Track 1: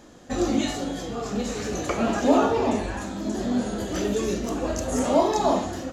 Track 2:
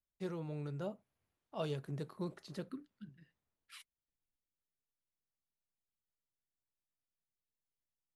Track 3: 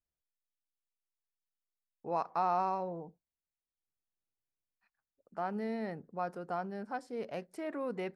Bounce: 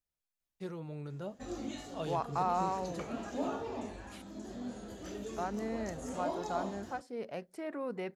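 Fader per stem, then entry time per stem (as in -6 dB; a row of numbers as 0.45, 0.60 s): -17.0, -0.5, -1.0 dB; 1.10, 0.40, 0.00 s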